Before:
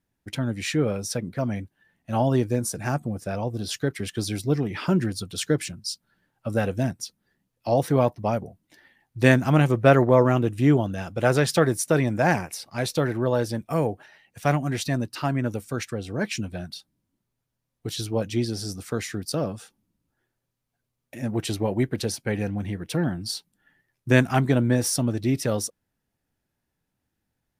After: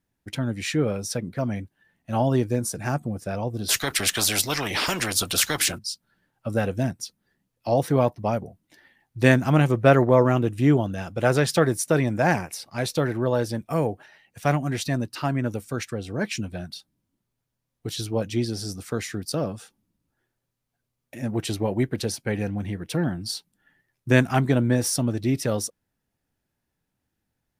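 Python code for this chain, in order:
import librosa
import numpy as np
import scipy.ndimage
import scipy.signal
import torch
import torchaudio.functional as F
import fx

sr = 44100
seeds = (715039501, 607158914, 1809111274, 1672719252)

y = fx.spectral_comp(x, sr, ratio=4.0, at=(3.68, 5.77), fade=0.02)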